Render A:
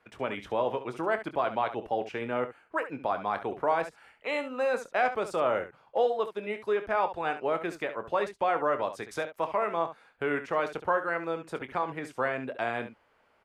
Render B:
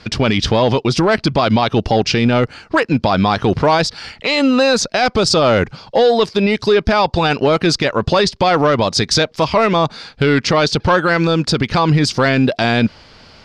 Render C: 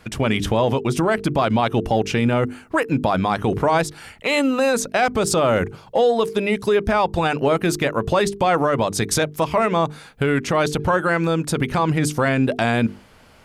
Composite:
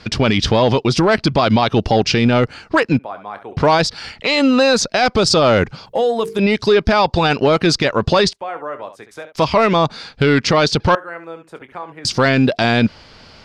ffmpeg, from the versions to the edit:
-filter_complex "[0:a]asplit=3[s0][s1][s2];[1:a]asplit=5[s3][s4][s5][s6][s7];[s3]atrim=end=2.992[s8];[s0]atrim=start=2.988:end=3.572[s9];[s4]atrim=start=3.568:end=5.862[s10];[2:a]atrim=start=5.858:end=6.392[s11];[s5]atrim=start=6.388:end=8.332[s12];[s1]atrim=start=8.328:end=9.352[s13];[s6]atrim=start=9.348:end=10.952[s14];[s2]atrim=start=10.948:end=12.052[s15];[s7]atrim=start=12.048[s16];[s8][s9]acrossfade=d=0.004:c1=hsin:c2=hsin[s17];[s17][s10]acrossfade=d=0.004:c1=hsin:c2=hsin[s18];[s18][s11]acrossfade=d=0.004:c1=hsin:c2=hsin[s19];[s19][s12]acrossfade=d=0.004:c1=hsin:c2=hsin[s20];[s20][s13]acrossfade=d=0.004:c1=hsin:c2=hsin[s21];[s21][s14]acrossfade=d=0.004:c1=hsin:c2=hsin[s22];[s22][s15]acrossfade=d=0.004:c1=hsin:c2=hsin[s23];[s23][s16]acrossfade=d=0.004:c1=hsin:c2=hsin"

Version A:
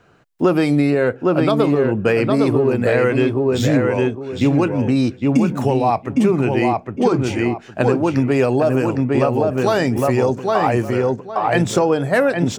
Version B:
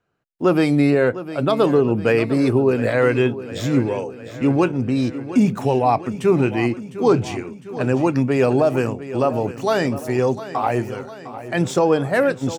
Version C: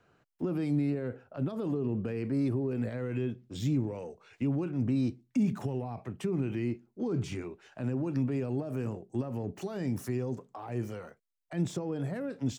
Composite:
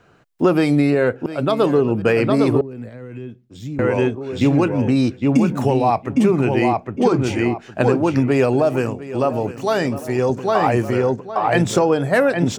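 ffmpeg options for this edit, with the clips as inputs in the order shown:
-filter_complex "[1:a]asplit=2[s0][s1];[0:a]asplit=4[s2][s3][s4][s5];[s2]atrim=end=1.262[s6];[s0]atrim=start=1.258:end=2.022[s7];[s3]atrim=start=2.018:end=2.612[s8];[2:a]atrim=start=2.608:end=3.792[s9];[s4]atrim=start=3.788:end=8.532[s10];[s1]atrim=start=8.528:end=10.292[s11];[s5]atrim=start=10.288[s12];[s6][s7]acrossfade=d=0.004:c1=hsin:c2=hsin[s13];[s13][s8]acrossfade=d=0.004:c1=hsin:c2=hsin[s14];[s14][s9]acrossfade=d=0.004:c1=hsin:c2=hsin[s15];[s15][s10]acrossfade=d=0.004:c1=hsin:c2=hsin[s16];[s16][s11]acrossfade=d=0.004:c1=hsin:c2=hsin[s17];[s17][s12]acrossfade=d=0.004:c1=hsin:c2=hsin"

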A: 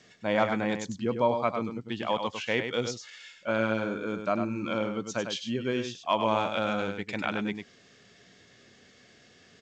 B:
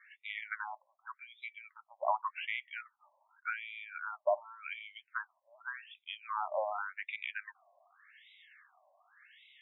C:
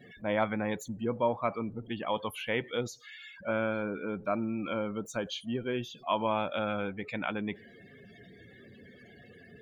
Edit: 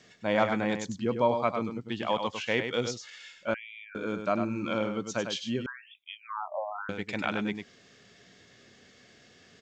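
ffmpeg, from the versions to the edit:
-filter_complex "[1:a]asplit=2[s0][s1];[0:a]asplit=3[s2][s3][s4];[s2]atrim=end=3.542[s5];[s0]atrim=start=3.538:end=3.952[s6];[s3]atrim=start=3.948:end=5.662[s7];[s1]atrim=start=5.658:end=6.892[s8];[s4]atrim=start=6.888[s9];[s5][s6]acrossfade=d=0.004:c1=hsin:c2=hsin[s10];[s10][s7]acrossfade=d=0.004:c1=hsin:c2=hsin[s11];[s11][s8]acrossfade=d=0.004:c1=hsin:c2=hsin[s12];[s12][s9]acrossfade=d=0.004:c1=hsin:c2=hsin"

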